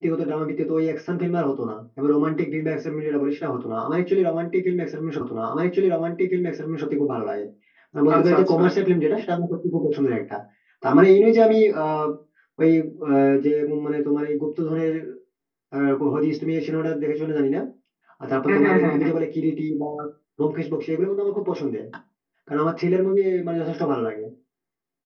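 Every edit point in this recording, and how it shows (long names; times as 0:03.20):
0:05.21: the same again, the last 1.66 s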